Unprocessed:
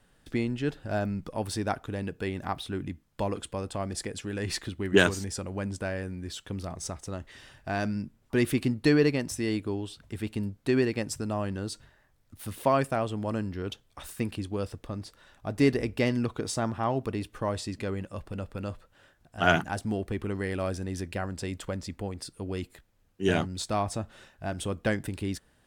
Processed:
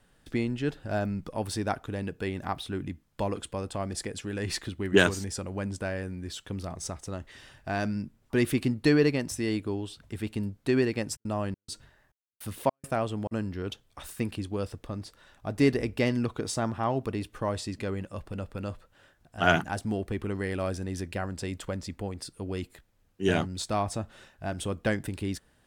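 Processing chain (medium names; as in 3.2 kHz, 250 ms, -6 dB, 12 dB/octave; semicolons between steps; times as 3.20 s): 11.15–13.31 s: trance gate ".xxx..xx" 104 bpm -60 dB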